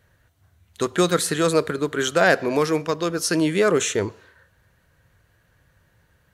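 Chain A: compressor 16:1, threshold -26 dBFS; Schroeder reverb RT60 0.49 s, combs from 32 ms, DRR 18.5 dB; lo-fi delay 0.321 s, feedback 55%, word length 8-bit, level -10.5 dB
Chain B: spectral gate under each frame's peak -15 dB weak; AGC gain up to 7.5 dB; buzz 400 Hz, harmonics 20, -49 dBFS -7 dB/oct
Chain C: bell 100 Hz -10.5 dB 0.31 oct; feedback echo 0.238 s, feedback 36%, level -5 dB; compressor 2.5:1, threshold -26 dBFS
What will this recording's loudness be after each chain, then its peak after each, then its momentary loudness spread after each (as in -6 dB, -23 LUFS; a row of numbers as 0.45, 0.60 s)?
-31.0, -23.5, -27.5 LUFS; -15.0, -4.0, -12.0 dBFS; 15, 8, 8 LU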